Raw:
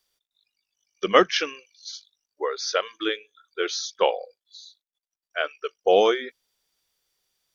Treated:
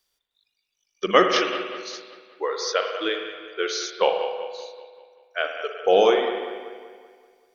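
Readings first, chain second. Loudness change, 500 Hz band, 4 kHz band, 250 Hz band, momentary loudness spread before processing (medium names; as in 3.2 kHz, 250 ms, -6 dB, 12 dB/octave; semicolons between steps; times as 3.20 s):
+0.5 dB, +2.0 dB, +1.0 dB, +1.5 dB, 20 LU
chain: bucket-brigade echo 192 ms, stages 4096, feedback 51%, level -11.5 dB; spring tank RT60 1.4 s, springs 50 ms, chirp 80 ms, DRR 5 dB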